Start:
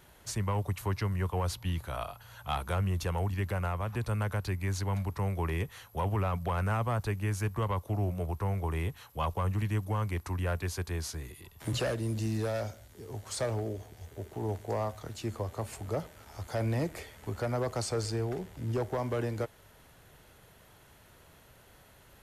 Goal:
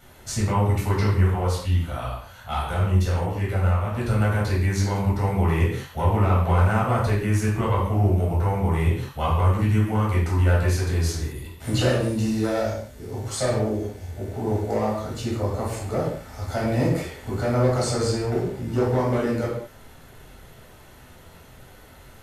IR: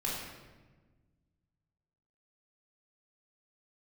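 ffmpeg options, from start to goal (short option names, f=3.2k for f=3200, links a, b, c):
-filter_complex "[0:a]asettb=1/sr,asplit=3[a][b][c];[a]atrim=end=1.314[d];[b]atrim=start=1.31:end=3.98,asetpts=PTS-STARTPTS,afade=t=in:d=0.004:c=qsin,afade=t=out:st=2.666:d=0.004:c=qsin,flanger=delay=16.5:depth=5:speed=1.5[e];[c]atrim=start=3.976[f];[d][e]acrossfade=d=0.004:c1=hsin:c2=qsin[g];[g][f]acrossfade=d=0.004:c1=qsin:c2=hsin[h];[1:a]atrim=start_sample=2205,afade=t=out:st=0.42:d=0.01,atrim=end_sample=18963,asetrate=74970,aresample=44100[i];[h][i]afir=irnorm=-1:irlink=0,volume=8.5dB"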